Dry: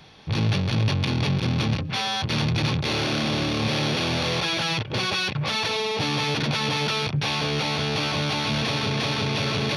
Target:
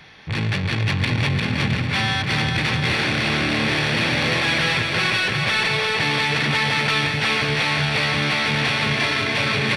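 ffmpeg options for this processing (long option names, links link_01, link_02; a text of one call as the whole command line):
ffmpeg -i in.wav -filter_complex "[0:a]equalizer=frequency=1900:width_type=o:width=0.87:gain=12,asoftclip=type=tanh:threshold=-13dB,asplit=2[link_01][link_02];[link_02]aecho=0:1:350|665|948.5|1204|1433:0.631|0.398|0.251|0.158|0.1[link_03];[link_01][link_03]amix=inputs=2:normalize=0" out.wav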